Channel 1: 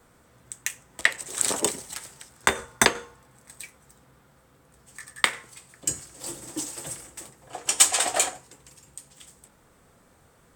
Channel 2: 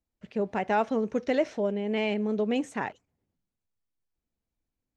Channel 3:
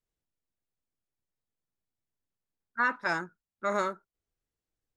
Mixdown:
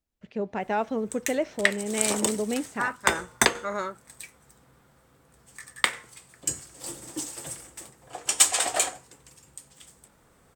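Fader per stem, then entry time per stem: −1.5, −1.5, −2.0 decibels; 0.60, 0.00, 0.00 seconds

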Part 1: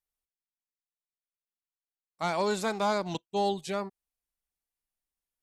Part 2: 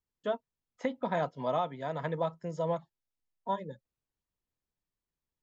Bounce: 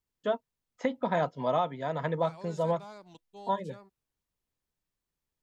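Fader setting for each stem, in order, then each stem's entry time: −19.5, +3.0 decibels; 0.00, 0.00 seconds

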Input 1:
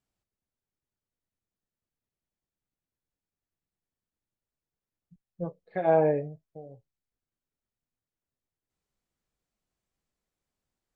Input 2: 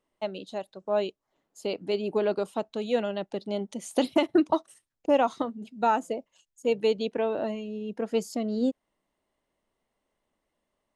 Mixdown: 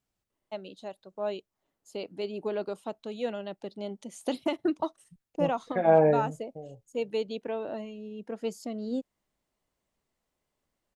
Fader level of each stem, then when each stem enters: +2.0, −6.0 decibels; 0.00, 0.30 seconds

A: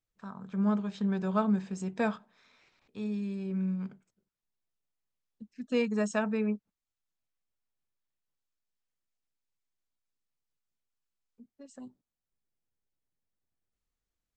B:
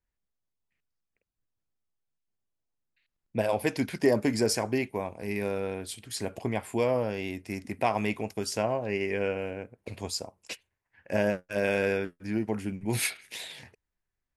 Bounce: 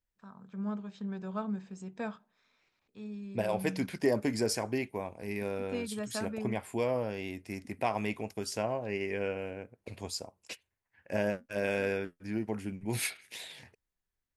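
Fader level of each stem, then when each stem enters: −8.0, −4.5 decibels; 0.00, 0.00 seconds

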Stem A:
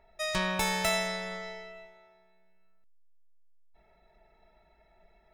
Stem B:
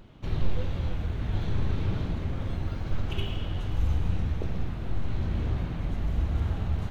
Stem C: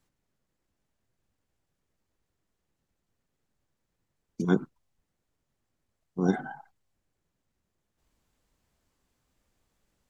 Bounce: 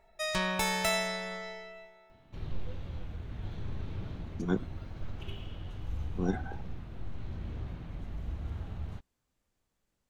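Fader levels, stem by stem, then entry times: −1.0, −10.5, −6.0 decibels; 0.00, 2.10, 0.00 seconds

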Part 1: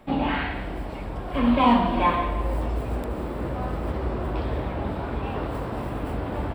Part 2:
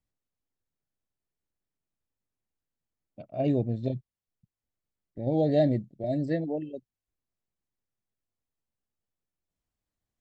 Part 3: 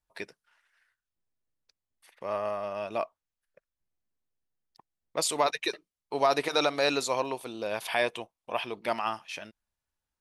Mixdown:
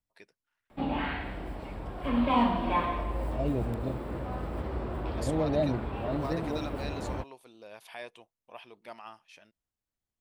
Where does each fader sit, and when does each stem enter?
−6.5, −5.0, −15.5 decibels; 0.70, 0.00, 0.00 seconds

